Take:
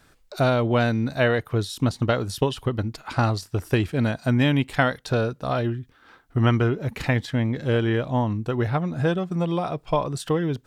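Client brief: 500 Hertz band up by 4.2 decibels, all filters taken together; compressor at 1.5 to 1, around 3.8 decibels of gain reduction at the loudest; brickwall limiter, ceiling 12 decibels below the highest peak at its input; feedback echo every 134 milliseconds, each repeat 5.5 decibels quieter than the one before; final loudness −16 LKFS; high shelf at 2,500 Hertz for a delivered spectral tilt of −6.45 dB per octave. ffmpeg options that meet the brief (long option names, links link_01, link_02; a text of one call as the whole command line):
ffmpeg -i in.wav -af "equalizer=frequency=500:width_type=o:gain=5.5,highshelf=frequency=2500:gain=-7.5,acompressor=threshold=-24dB:ratio=1.5,alimiter=limit=-21dB:level=0:latency=1,aecho=1:1:134|268|402|536|670|804|938:0.531|0.281|0.149|0.079|0.0419|0.0222|0.0118,volume=13dB" out.wav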